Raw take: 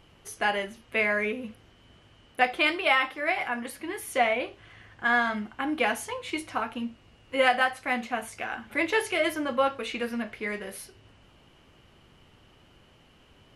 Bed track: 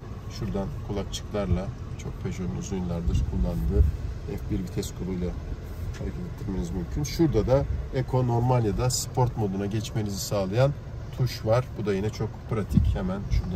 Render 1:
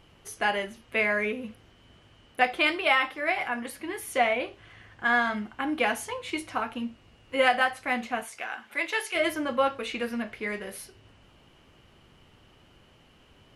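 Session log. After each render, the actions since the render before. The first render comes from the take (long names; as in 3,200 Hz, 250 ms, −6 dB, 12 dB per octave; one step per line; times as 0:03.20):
0:08.22–0:09.14: high-pass filter 550 Hz → 1,400 Hz 6 dB per octave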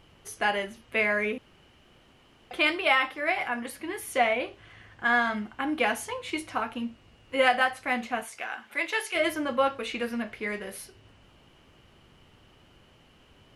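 0:01.38–0:02.51: fill with room tone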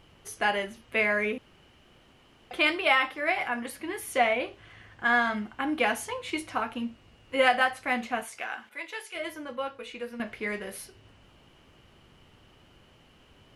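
0:08.69–0:10.20: tuned comb filter 490 Hz, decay 0.15 s, mix 70%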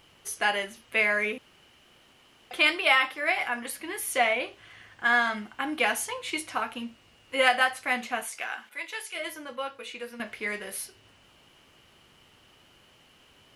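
spectral tilt +2 dB per octave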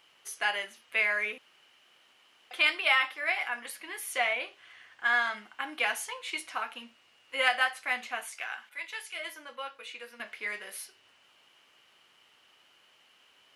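high-pass filter 1,300 Hz 6 dB per octave
high-shelf EQ 4,800 Hz −7 dB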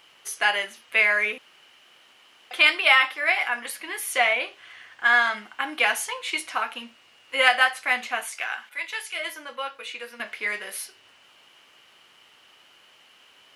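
level +7.5 dB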